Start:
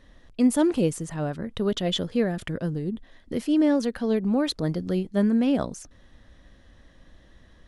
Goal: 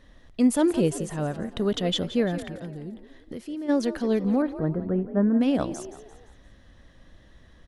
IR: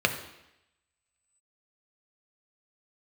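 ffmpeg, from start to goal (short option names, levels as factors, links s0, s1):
-filter_complex "[0:a]asplit=3[s0][s1][s2];[s0]afade=t=out:st=2.44:d=0.02[s3];[s1]acompressor=threshold=0.0141:ratio=3,afade=t=in:st=2.44:d=0.02,afade=t=out:st=3.68:d=0.02[s4];[s2]afade=t=in:st=3.68:d=0.02[s5];[s3][s4][s5]amix=inputs=3:normalize=0,asettb=1/sr,asplit=3[s6][s7][s8];[s6]atrim=end=4.424[s9];[s7]atrim=start=4.42:end=5.41,asetpts=PTS-STARTPTS,afade=t=in:d=0.004:c=qsin,afade=t=out:st=0.986:d=0.004:c=qsin,lowpass=f=1600:w=0.5412,lowpass=f=1600:w=1.3066[s10];[s8]atrim=start=5.406[s11];[s9][s10]acrossfade=d=0.004:c1=hsin:c2=qsin[s12];[s12][s11]acrossfade=d=0.004:c1=qsin:c2=hsin,asplit=5[s13][s14][s15][s16][s17];[s14]adelay=172,afreqshift=51,volume=0.2[s18];[s15]adelay=344,afreqshift=102,volume=0.0902[s19];[s16]adelay=516,afreqshift=153,volume=0.0403[s20];[s17]adelay=688,afreqshift=204,volume=0.0182[s21];[s13][s18][s19][s20][s21]amix=inputs=5:normalize=0"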